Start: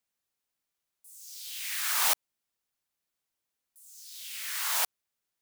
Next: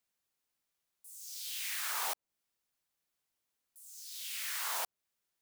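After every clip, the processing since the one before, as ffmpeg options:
-filter_complex "[0:a]acrossover=split=1100[a][b];[a]alimiter=level_in=10.5dB:limit=-24dB:level=0:latency=1,volume=-10.5dB[c];[b]acompressor=threshold=-35dB:ratio=6[d];[c][d]amix=inputs=2:normalize=0"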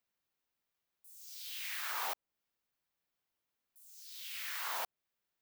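-af "equalizer=f=8.9k:w=0.64:g=-9"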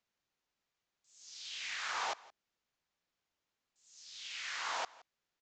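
-filter_complex "[0:a]aresample=16000,acrusher=bits=5:mode=log:mix=0:aa=0.000001,aresample=44100,asplit=2[a][b];[b]adelay=169.1,volume=-21dB,highshelf=f=4k:g=-3.8[c];[a][c]amix=inputs=2:normalize=0,volume=2.5dB"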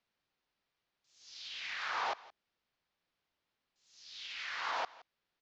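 -filter_complex "[0:a]lowpass=f=5.1k:w=0.5412,lowpass=f=5.1k:w=1.3066,acrossover=split=2000[a][b];[b]alimiter=level_in=15.5dB:limit=-24dB:level=0:latency=1,volume=-15.5dB[c];[a][c]amix=inputs=2:normalize=0,volume=2.5dB"

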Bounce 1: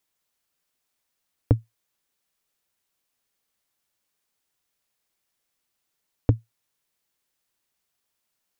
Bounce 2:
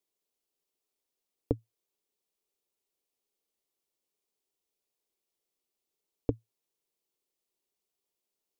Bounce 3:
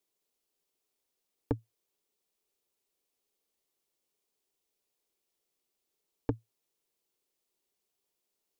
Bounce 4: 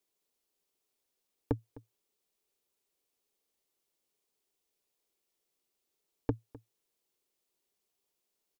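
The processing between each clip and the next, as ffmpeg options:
-af "equalizer=f=100:t=o:w=0.67:g=-10,equalizer=f=400:t=o:w=0.67:g=11,equalizer=f=1.6k:t=o:w=0.67:g=-10,volume=-8.5dB"
-af "asoftclip=type=tanh:threshold=-22.5dB,volume=3dB"
-af "aecho=1:1:256:0.1"

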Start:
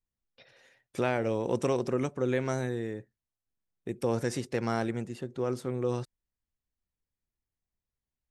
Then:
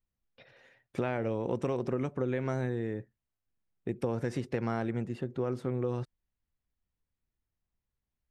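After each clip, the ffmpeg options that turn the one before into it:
-af "bass=f=250:g=3,treble=f=4k:g=-12,acompressor=threshold=-29dB:ratio=6,volume=1.5dB"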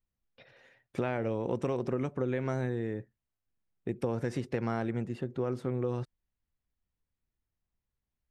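-af anull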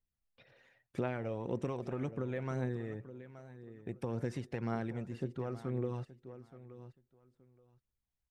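-af "aecho=1:1:874|1748:0.188|0.0377,aphaser=in_gain=1:out_gain=1:delay=1.7:decay=0.35:speed=1.9:type=triangular,volume=-6dB"

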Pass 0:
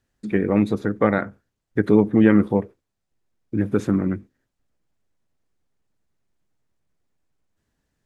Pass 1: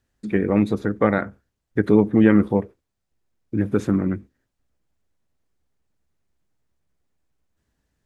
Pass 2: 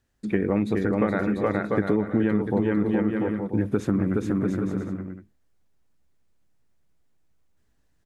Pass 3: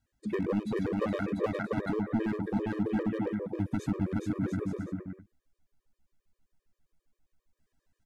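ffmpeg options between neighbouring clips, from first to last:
-af "equalizer=f=65:w=4:g=8.5"
-filter_complex "[0:a]asplit=2[a][b];[b]aecho=0:1:420|693|870.4|985.8|1061:0.631|0.398|0.251|0.158|0.1[c];[a][c]amix=inputs=2:normalize=0,acompressor=threshold=-18dB:ratio=10"
-af "volume=18dB,asoftclip=hard,volume=-18dB,afftfilt=real='re*gt(sin(2*PI*7.5*pts/sr)*(1-2*mod(floor(b*sr/1024/320),2)),0)':imag='im*gt(sin(2*PI*7.5*pts/sr)*(1-2*mod(floor(b*sr/1024/320),2)),0)':win_size=1024:overlap=0.75,volume=-2.5dB"

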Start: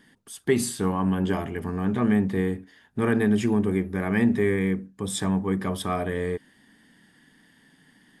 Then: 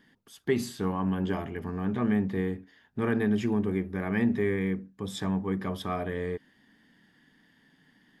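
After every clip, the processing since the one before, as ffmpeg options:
-af "equalizer=f=9k:t=o:w=0.51:g=-14,volume=-4.5dB"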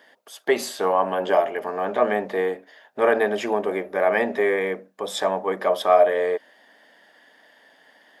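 -af "highpass=f=600:t=q:w=4.9,volume=9dB"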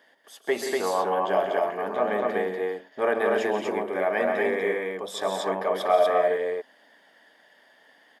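-af "aecho=1:1:134.1|174.9|242:0.316|0.355|0.794,volume=-5.5dB"

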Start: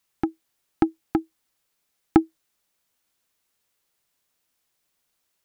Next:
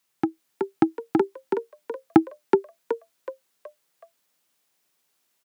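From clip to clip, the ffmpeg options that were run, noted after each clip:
-filter_complex "[0:a]highpass=f=110:w=0.5412,highpass=f=110:w=1.3066,asplit=2[a][b];[b]asplit=5[c][d][e][f][g];[c]adelay=373,afreqshift=69,volume=-3dB[h];[d]adelay=746,afreqshift=138,volume=-11.2dB[i];[e]adelay=1119,afreqshift=207,volume=-19.4dB[j];[f]adelay=1492,afreqshift=276,volume=-27.5dB[k];[g]adelay=1865,afreqshift=345,volume=-35.7dB[l];[h][i][j][k][l]amix=inputs=5:normalize=0[m];[a][m]amix=inputs=2:normalize=0,volume=1dB"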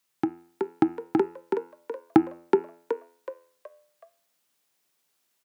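-af "bandreject=f=85.25:t=h:w=4,bandreject=f=170.5:t=h:w=4,bandreject=f=255.75:t=h:w=4,bandreject=f=341:t=h:w=4,bandreject=f=426.25:t=h:w=4,bandreject=f=511.5:t=h:w=4,bandreject=f=596.75:t=h:w=4,bandreject=f=682:t=h:w=4,bandreject=f=767.25:t=h:w=4,bandreject=f=852.5:t=h:w=4,bandreject=f=937.75:t=h:w=4,bandreject=f=1.023k:t=h:w=4,bandreject=f=1.10825k:t=h:w=4,bandreject=f=1.1935k:t=h:w=4,bandreject=f=1.27875k:t=h:w=4,bandreject=f=1.364k:t=h:w=4,bandreject=f=1.44925k:t=h:w=4,bandreject=f=1.5345k:t=h:w=4,bandreject=f=1.61975k:t=h:w=4,bandreject=f=1.705k:t=h:w=4,bandreject=f=1.79025k:t=h:w=4,bandreject=f=1.8755k:t=h:w=4,bandreject=f=1.96075k:t=h:w=4,bandreject=f=2.046k:t=h:w=4,bandreject=f=2.13125k:t=h:w=4,bandreject=f=2.2165k:t=h:w=4,bandreject=f=2.30175k:t=h:w=4,bandreject=f=2.387k:t=h:w=4,bandreject=f=2.47225k:t=h:w=4,bandreject=f=2.5575k:t=h:w=4,bandreject=f=2.64275k:t=h:w=4,bandreject=f=2.728k:t=h:w=4,bandreject=f=2.81325k:t=h:w=4,bandreject=f=2.8985k:t=h:w=4,volume=-1.5dB"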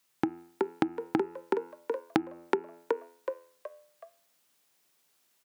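-af "acompressor=threshold=-27dB:ratio=8,volume=3dB"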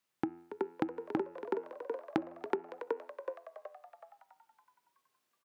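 -filter_complex "[0:a]highshelf=f=3.6k:g=-8.5,asplit=2[a][b];[b]asplit=6[c][d][e][f][g][h];[c]adelay=280,afreqshift=95,volume=-11.5dB[i];[d]adelay=560,afreqshift=190,volume=-16.4dB[j];[e]adelay=840,afreqshift=285,volume=-21.3dB[k];[f]adelay=1120,afreqshift=380,volume=-26.1dB[l];[g]adelay=1400,afreqshift=475,volume=-31dB[m];[h]adelay=1680,afreqshift=570,volume=-35.9dB[n];[i][j][k][l][m][n]amix=inputs=6:normalize=0[o];[a][o]amix=inputs=2:normalize=0,volume=-5.5dB"

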